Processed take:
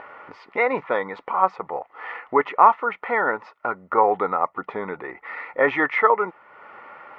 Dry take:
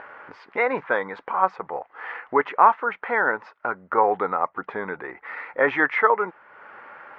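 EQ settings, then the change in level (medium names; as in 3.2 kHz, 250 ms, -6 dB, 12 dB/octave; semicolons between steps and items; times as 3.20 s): Butterworth band-stop 1.6 kHz, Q 6.2; +1.5 dB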